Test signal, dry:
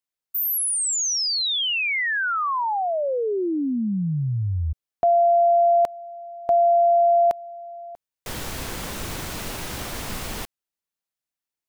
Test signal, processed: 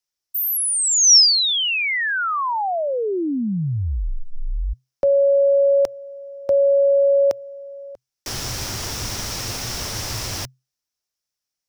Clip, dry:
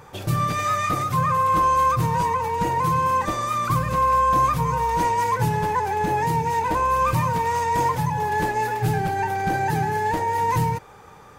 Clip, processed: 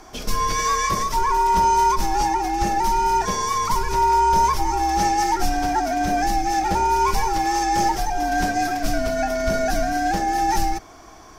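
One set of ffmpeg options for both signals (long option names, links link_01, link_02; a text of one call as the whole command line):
ffmpeg -i in.wav -af "afreqshift=-130,equalizer=frequency=5500:width_type=o:width=0.51:gain=13,volume=1.5dB" out.wav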